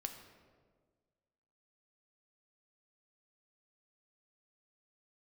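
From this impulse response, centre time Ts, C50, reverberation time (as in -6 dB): 26 ms, 7.5 dB, 1.6 s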